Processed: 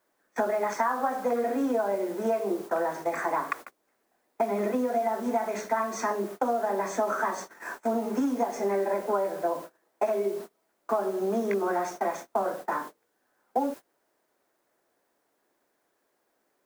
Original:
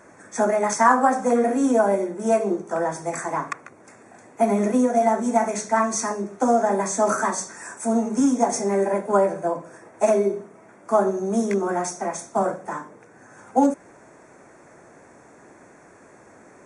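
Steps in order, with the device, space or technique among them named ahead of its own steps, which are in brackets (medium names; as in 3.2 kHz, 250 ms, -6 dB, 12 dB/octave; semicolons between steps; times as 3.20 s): baby monitor (band-pass 300–3100 Hz; compression 10:1, threshold -26 dBFS, peak gain reduction 15 dB; white noise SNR 23 dB; gate -40 dBFS, range -27 dB); 9.61–10.38 s: high-pass 85 Hz; trim +2.5 dB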